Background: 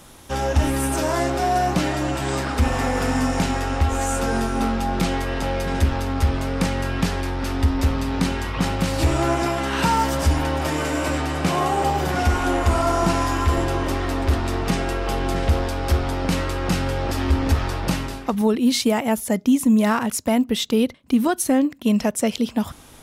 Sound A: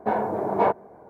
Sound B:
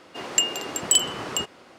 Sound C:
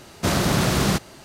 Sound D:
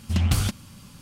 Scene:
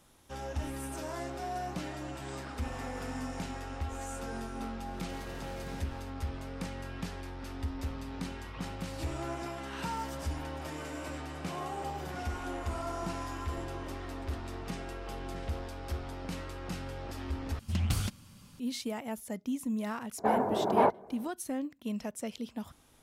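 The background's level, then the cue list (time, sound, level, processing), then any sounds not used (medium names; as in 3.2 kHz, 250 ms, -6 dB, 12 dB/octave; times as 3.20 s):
background -17 dB
4.86 s: add C -14.5 dB + compression 4:1, threshold -33 dBFS
17.59 s: replace with D -8.5 dB
20.18 s: add A -3.5 dB + vibrato 14 Hz 65 cents
not used: B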